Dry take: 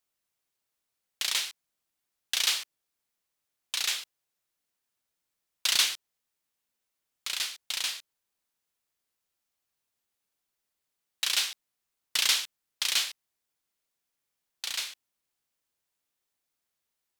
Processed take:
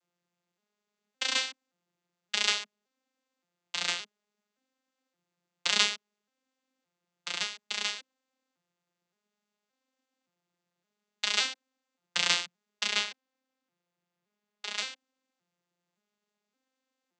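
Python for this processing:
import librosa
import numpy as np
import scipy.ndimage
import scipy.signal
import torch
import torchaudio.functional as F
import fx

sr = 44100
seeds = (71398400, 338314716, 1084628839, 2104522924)

y = fx.vocoder_arp(x, sr, chord='minor triad', root=53, every_ms=570)
y = fx.high_shelf(y, sr, hz=5800.0, db=-6.5, at=(12.87, 14.78))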